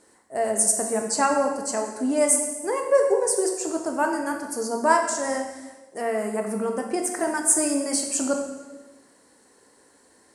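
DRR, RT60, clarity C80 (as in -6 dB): 3.0 dB, 1.2 s, 7.5 dB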